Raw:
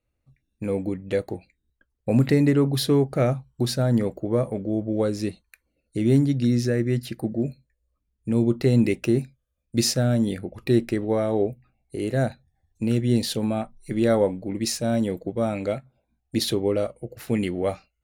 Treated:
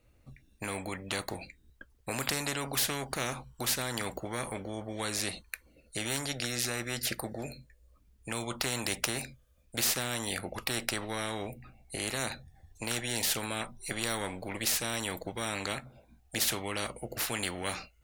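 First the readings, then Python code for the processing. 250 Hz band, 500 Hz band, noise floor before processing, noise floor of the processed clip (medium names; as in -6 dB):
-17.5 dB, -14.5 dB, -77 dBFS, -65 dBFS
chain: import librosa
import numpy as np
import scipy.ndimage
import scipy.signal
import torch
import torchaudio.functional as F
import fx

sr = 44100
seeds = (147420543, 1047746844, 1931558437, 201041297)

y = fx.spectral_comp(x, sr, ratio=4.0)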